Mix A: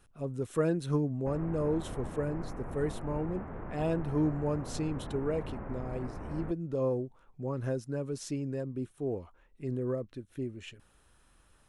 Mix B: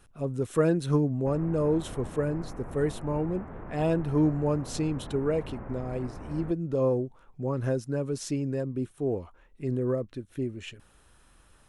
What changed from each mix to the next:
speech +5.0 dB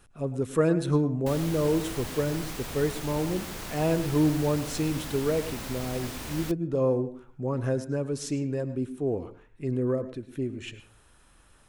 background: remove Gaussian smoothing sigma 6.3 samples
reverb: on, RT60 0.40 s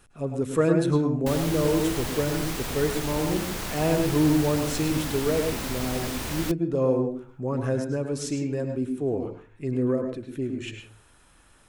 speech: send +9.5 dB
background +5.5 dB

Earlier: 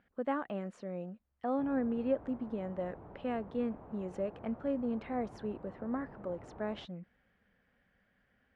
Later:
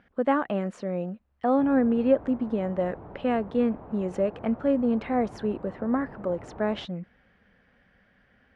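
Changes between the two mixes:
speech +10.5 dB
background +7.5 dB

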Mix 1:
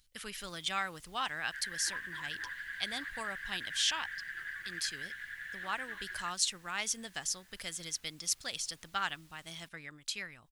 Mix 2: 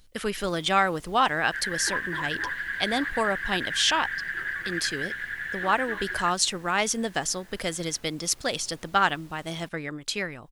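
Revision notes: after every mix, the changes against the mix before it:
master: remove guitar amp tone stack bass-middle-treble 5-5-5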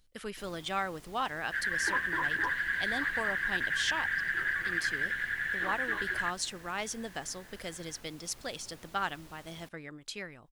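speech −11.0 dB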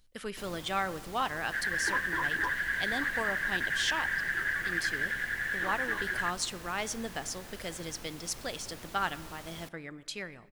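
speech: send on
first sound +7.5 dB

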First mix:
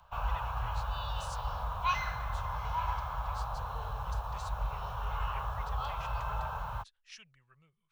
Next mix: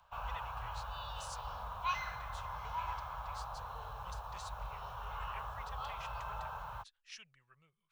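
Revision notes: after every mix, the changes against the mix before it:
background −4.5 dB
master: add low-shelf EQ 300 Hz −6.5 dB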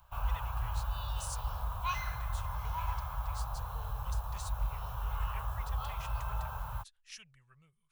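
master: remove three-way crossover with the lows and the highs turned down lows −12 dB, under 200 Hz, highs −15 dB, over 6,100 Hz

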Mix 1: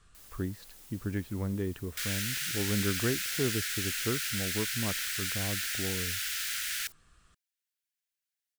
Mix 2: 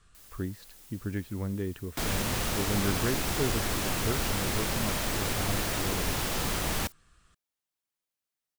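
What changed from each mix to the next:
second sound: remove Butterworth high-pass 1,400 Hz 96 dB per octave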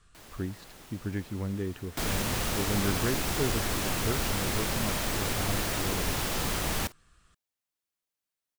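first sound: remove first-order pre-emphasis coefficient 0.8

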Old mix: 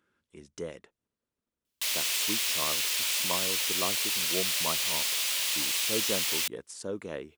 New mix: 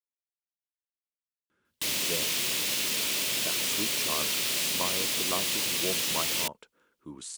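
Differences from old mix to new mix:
speech: entry +1.50 s
background: remove high-pass filter 830 Hz 12 dB per octave

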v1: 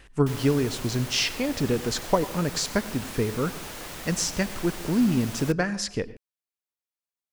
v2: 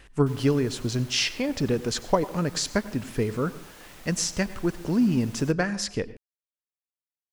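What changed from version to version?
background −10.5 dB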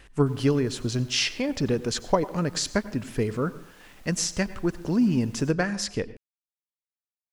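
background −8.5 dB

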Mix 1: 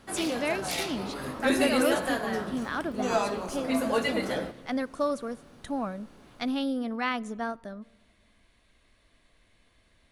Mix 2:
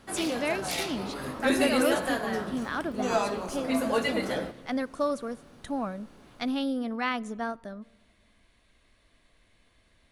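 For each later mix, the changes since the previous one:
nothing changed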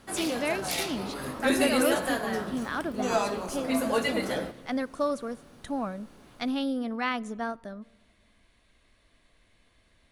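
background: add high-shelf EQ 8,700 Hz +6 dB

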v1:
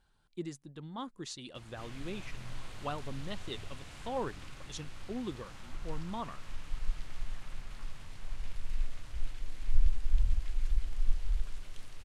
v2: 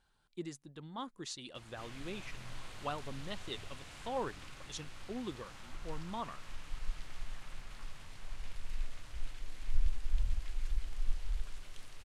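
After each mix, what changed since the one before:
master: add low-shelf EQ 350 Hz −5 dB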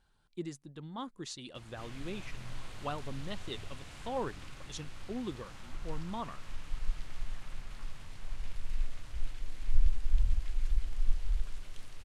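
master: add low-shelf EQ 350 Hz +5 dB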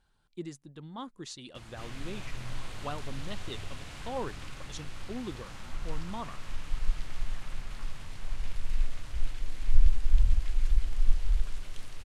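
background +5.0 dB

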